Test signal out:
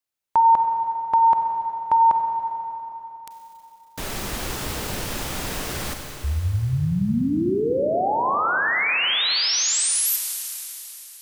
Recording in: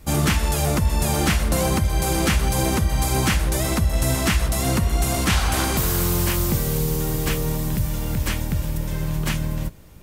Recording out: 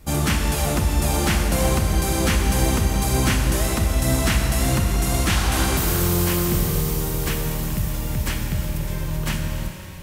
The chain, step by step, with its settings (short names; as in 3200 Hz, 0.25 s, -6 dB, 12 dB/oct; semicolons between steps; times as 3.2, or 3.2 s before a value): Schroeder reverb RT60 3.5 s, combs from 31 ms, DRR 3.5 dB; gain -1.5 dB